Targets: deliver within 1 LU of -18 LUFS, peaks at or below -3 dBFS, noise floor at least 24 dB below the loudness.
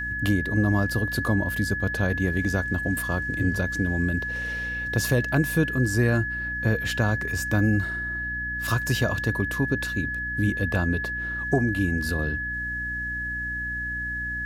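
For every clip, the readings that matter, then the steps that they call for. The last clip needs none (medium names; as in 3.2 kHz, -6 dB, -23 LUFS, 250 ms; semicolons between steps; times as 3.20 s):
hum 60 Hz; highest harmonic 300 Hz; hum level -34 dBFS; steady tone 1.7 kHz; tone level -28 dBFS; loudness -25.5 LUFS; peak level -8.5 dBFS; loudness target -18.0 LUFS
-> hum notches 60/120/180/240/300 Hz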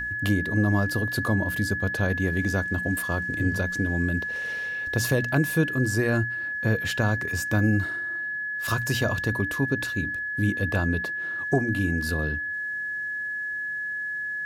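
hum not found; steady tone 1.7 kHz; tone level -28 dBFS
-> band-stop 1.7 kHz, Q 30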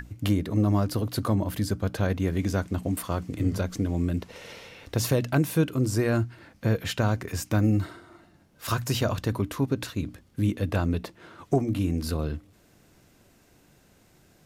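steady tone not found; loudness -27.5 LUFS; peak level -10.0 dBFS; loudness target -18.0 LUFS
-> trim +9.5 dB; peak limiter -3 dBFS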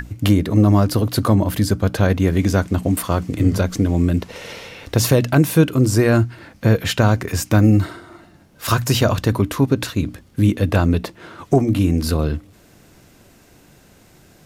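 loudness -18.0 LUFS; peak level -3.0 dBFS; noise floor -50 dBFS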